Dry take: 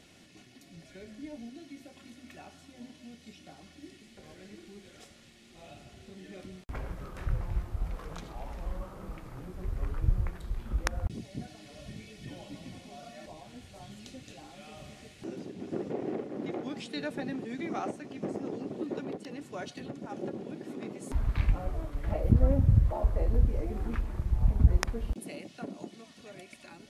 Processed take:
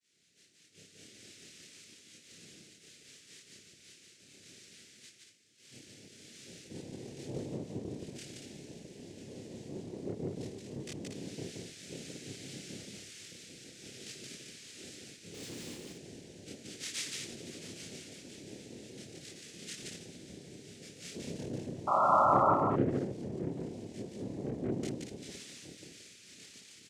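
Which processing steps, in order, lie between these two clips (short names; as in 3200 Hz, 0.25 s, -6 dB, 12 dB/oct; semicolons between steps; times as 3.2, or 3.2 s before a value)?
half-wave gain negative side -7 dB; expander -48 dBFS; inverse Chebyshev band-stop 360–1100 Hz, stop band 70 dB; in parallel at +3 dB: compressor, threshold -36 dBFS, peak gain reduction 19.5 dB; on the sum: chorus voices 2, 1 Hz, delay 19 ms, depth 4.6 ms; soft clip -28 dBFS, distortion -7 dB; noise vocoder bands 3; 15.34–15.75 power-law curve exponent 0.5; 21.87–22.53 painted sound noise 530–1400 Hz -32 dBFS; loudspeakers at several distances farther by 10 m 0 dB, 60 m -1 dB, 80 m -5 dB; gain +2 dB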